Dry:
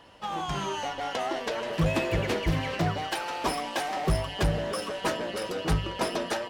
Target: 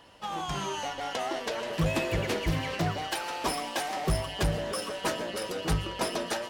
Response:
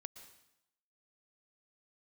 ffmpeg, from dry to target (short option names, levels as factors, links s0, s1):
-filter_complex "[0:a]asplit=2[s0][s1];[1:a]atrim=start_sample=2205,atrim=end_sample=6615,highshelf=f=3700:g=10.5[s2];[s1][s2]afir=irnorm=-1:irlink=0,volume=1.26[s3];[s0][s3]amix=inputs=2:normalize=0,volume=0.473"